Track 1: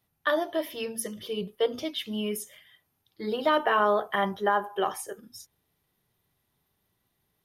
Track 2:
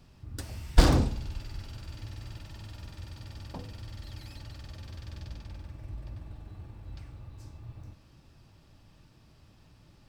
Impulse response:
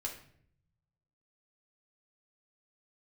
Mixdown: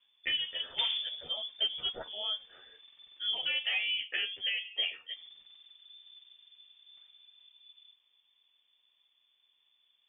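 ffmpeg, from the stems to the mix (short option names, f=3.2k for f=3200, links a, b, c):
-filter_complex "[0:a]acompressor=threshold=-25dB:ratio=6,asplit=2[a][b];[b]adelay=11.7,afreqshift=0.33[c];[a][c]amix=inputs=2:normalize=1,volume=-0.5dB[d];[1:a]highpass=f=81:p=1,highshelf=f=2.8k:g=-11.5,volume=-11.5dB,asplit=3[e][f][g];[e]atrim=end=3.9,asetpts=PTS-STARTPTS,afade=t=out:st=3.896:d=0.004:c=hsin[h];[f]atrim=start=3.9:end=5.1,asetpts=PTS-STARTPTS,volume=0[i];[g]atrim=start=5.1,asetpts=PTS-STARTPTS,afade=t=in:d=0.004:c=hsin[j];[h][i][j]concat=n=3:v=0:a=1[k];[d][k]amix=inputs=2:normalize=0,lowpass=f=3.1k:t=q:w=0.5098,lowpass=f=3.1k:t=q:w=0.6013,lowpass=f=3.1k:t=q:w=0.9,lowpass=f=3.1k:t=q:w=2.563,afreqshift=-3600"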